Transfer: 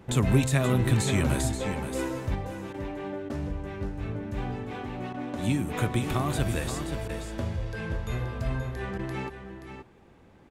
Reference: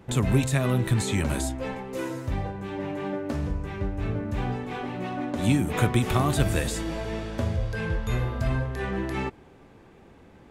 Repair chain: interpolate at 2.73/3.29/5.13/7.08/8.98, 10 ms; inverse comb 0.528 s -9 dB; gain 0 dB, from 2.35 s +4.5 dB

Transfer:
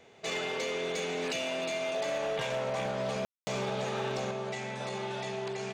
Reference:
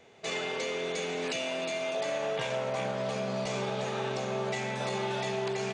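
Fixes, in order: clip repair -27 dBFS; room tone fill 3.25–3.47; gain correction +4 dB, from 4.31

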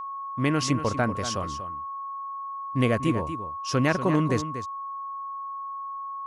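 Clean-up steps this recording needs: clip repair -12 dBFS; notch 1100 Hz, Q 30; inverse comb 0.239 s -11 dB

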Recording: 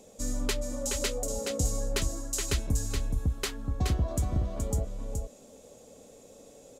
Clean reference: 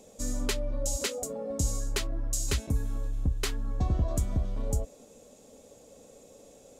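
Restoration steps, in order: clip repair -17.5 dBFS; inverse comb 0.423 s -5 dB

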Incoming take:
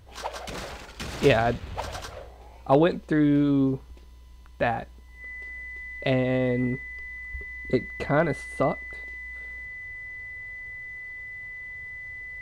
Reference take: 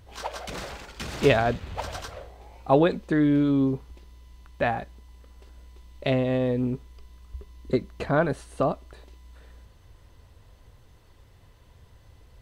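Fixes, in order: clip repair -9.5 dBFS; notch 2000 Hz, Q 30

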